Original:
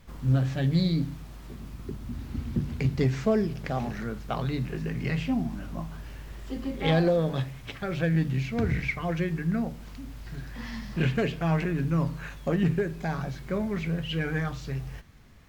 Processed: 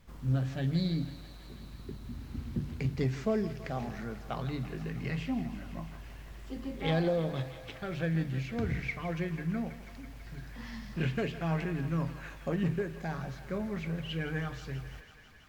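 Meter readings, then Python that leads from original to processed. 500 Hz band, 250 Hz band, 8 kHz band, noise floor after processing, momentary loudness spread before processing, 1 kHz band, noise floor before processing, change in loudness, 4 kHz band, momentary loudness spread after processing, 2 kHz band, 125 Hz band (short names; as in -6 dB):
-6.0 dB, -6.0 dB, n/a, -48 dBFS, 15 LU, -5.5 dB, -44 dBFS, -6.0 dB, -5.5 dB, 15 LU, -5.5 dB, -6.0 dB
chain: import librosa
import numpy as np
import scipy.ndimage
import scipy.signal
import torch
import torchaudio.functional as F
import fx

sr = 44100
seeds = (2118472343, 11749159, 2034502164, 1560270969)

y = fx.echo_thinned(x, sr, ms=164, feedback_pct=83, hz=400.0, wet_db=-13.5)
y = y * 10.0 ** (-6.0 / 20.0)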